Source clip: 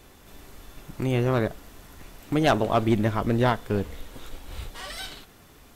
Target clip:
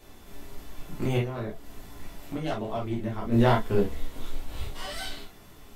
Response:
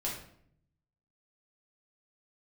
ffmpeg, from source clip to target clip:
-filter_complex "[0:a]asettb=1/sr,asplit=3[a][b][c];[a]atrim=end=1.174[d];[b]atrim=start=1.17:end=3.32,asetpts=PTS-STARTPTS,afade=t=in:d=0.004:c=qsin,afade=t=out:st=2.146:d=0.004:c=qsin,acompressor=threshold=-33dB:ratio=3[e];[c]atrim=start=3.316[f];[d][e]acrossfade=d=0.004:c1=hsin:c2=qsin[g];[g][f]acrossfade=d=0.004:c1=qsin:c2=hsin[h];[1:a]atrim=start_sample=2205,atrim=end_sample=3087[i];[h][i]afir=irnorm=-1:irlink=0,volume=-2.5dB"

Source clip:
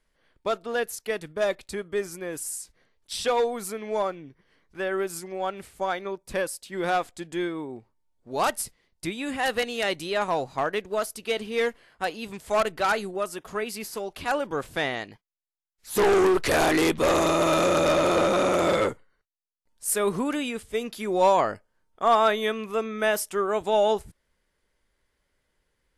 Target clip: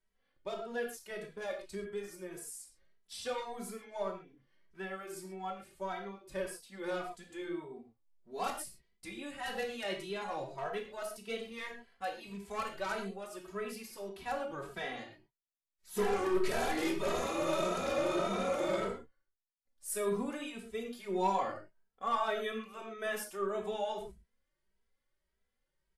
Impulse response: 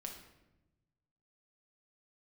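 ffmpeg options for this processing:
-filter_complex "[1:a]atrim=start_sample=2205,atrim=end_sample=6174[a];[0:a][a]afir=irnorm=-1:irlink=0,asplit=2[b][c];[c]adelay=2.7,afreqshift=1.7[d];[b][d]amix=inputs=2:normalize=1,volume=-5.5dB"

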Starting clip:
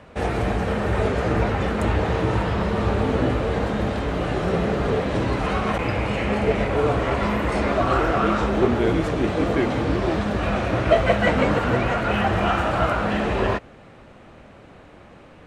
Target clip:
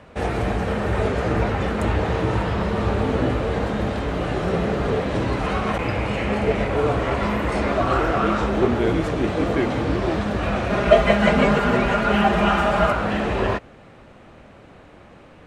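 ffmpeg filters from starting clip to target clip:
-filter_complex "[0:a]asettb=1/sr,asplit=3[a][b][c];[a]atrim=end=10.704[d];[b]atrim=start=10.7:end=12.92,asetpts=PTS-STARTPTS,afade=t=in:d=0.004:c=qsin,afade=t=out:st=2.216:d=0.004:c=qsin,aecho=1:1:4.9:0.97,atrim=end_sample=97902[e];[c]atrim=start=12.916[f];[d][e]acrossfade=d=0.004:c1=hsin:c2=qsin[g];[g][f]acrossfade=d=0.004:c1=qsin:c2=hsin"

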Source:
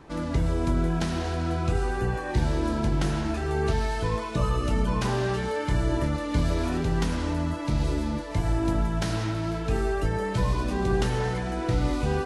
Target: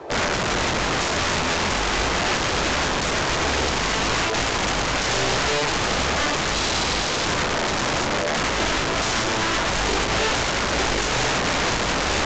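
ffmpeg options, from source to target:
-filter_complex "[0:a]highpass=f=48:w=0.5412,highpass=f=48:w=1.3066,equalizer=f=640:t=o:w=0.91:g=9.5,aeval=exprs='0.501*(cos(1*acos(clip(val(0)/0.501,-1,1)))-cos(1*PI/2))+0.0891*(cos(4*acos(clip(val(0)/0.501,-1,1)))-cos(4*PI/2))+0.0501*(cos(5*acos(clip(val(0)/0.501,-1,1)))-cos(5*PI/2))+0.0112*(cos(7*acos(clip(val(0)/0.501,-1,1)))-cos(7*PI/2))+0.01*(cos(8*acos(clip(val(0)/0.501,-1,1)))-cos(8*PI/2))':c=same,lowshelf=f=300:t=q:w=3:g=-7,acrossover=split=120|5400[a][b][c];[b]asoftclip=type=tanh:threshold=-22dB[d];[a][d][c]amix=inputs=3:normalize=0,asettb=1/sr,asplit=3[e][f][g];[e]atrim=end=6.544[h];[f]atrim=start=6.54:end=7.26,asetpts=PTS-STARTPTS,afade=t=in:d=0.004:c=qsin,afade=t=out:st=0.716:d=0.004:c=qsin,aeval=exprs='val(0)+0.0126*sin(2*PI*4000*n/s)':c=same[i];[g]atrim=start=7.256[j];[h][i]acrossfade=d=0.004:c1=hsin:c2=qsin[k];[k][j]acrossfade=d=0.004:c1=qsin:c2=hsin,aeval=exprs='(mod(15.8*val(0)+1,2)-1)/15.8':c=same,volume=6dB" -ar 16000 -c:a pcm_mulaw

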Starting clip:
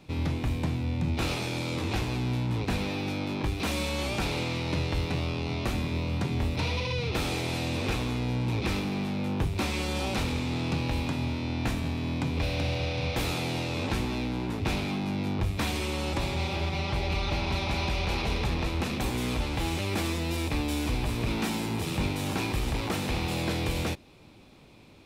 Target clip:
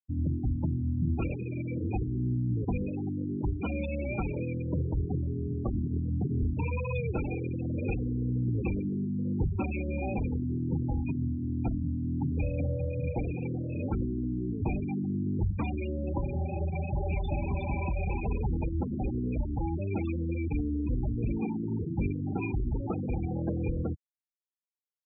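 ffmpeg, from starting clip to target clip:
-af "aresample=8000,aresample=44100,afftfilt=real='re*gte(hypot(re,im),0.0794)':imag='im*gte(hypot(re,im),0.0794)':win_size=1024:overlap=0.75"

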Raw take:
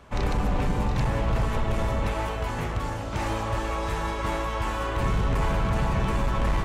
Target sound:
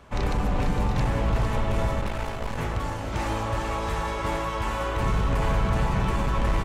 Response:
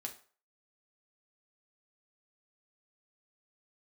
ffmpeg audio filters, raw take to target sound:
-filter_complex "[0:a]asettb=1/sr,asplit=3[a][b][c];[a]atrim=end=2.004[d];[b]atrim=start=2:end=2.58,asetpts=PTS-STARTPTS,afade=t=in:d=0.004:c=qsin,afade=t=out:st=0.576:d=0.004:c=qsin,aeval=exprs='max(val(0),0)':c=same[e];[c]atrim=start=2.576[f];[d][e]acrossfade=d=0.004:c1=hsin:c2=qsin[g];[g][f]acrossfade=d=0.004:c1=qsin:c2=hsin,aecho=1:1:456:0.376"

